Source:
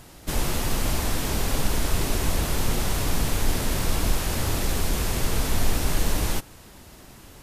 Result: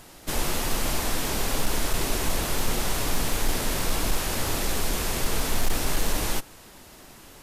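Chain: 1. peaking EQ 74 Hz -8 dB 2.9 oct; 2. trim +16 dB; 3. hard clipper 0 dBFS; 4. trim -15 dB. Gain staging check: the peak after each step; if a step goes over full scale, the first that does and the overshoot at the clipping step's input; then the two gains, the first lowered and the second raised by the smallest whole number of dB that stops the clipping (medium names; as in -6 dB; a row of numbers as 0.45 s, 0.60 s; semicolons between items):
-10.5 dBFS, +5.5 dBFS, 0.0 dBFS, -15.0 dBFS; step 2, 5.5 dB; step 2 +10 dB, step 4 -9 dB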